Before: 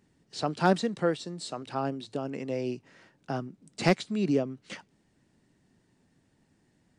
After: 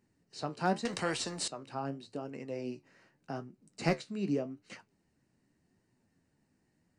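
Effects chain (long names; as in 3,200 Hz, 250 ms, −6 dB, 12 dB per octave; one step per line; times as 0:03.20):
notch filter 3,400 Hz, Q 5.1
flanger 0.84 Hz, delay 7.8 ms, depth 8.5 ms, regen +60%
0:00.85–0:01.48: every bin compressed towards the loudest bin 2 to 1
level −2.5 dB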